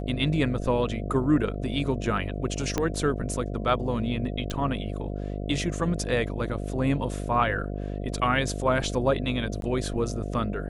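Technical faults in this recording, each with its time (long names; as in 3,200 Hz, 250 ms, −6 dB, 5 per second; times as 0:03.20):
mains buzz 50 Hz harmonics 14 −32 dBFS
0:02.78: click −11 dBFS
0:04.50: click −20 dBFS
0:09.61–0:09.62: drop-out 12 ms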